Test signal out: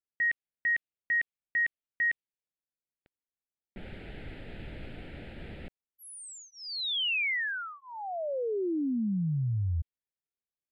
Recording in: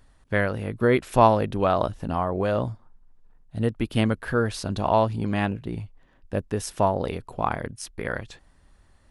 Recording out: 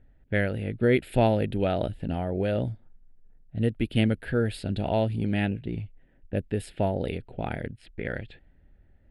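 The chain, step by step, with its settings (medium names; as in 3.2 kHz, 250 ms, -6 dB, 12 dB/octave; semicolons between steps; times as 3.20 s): level-controlled noise filter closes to 1.4 kHz, open at -21.5 dBFS; static phaser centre 2.6 kHz, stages 4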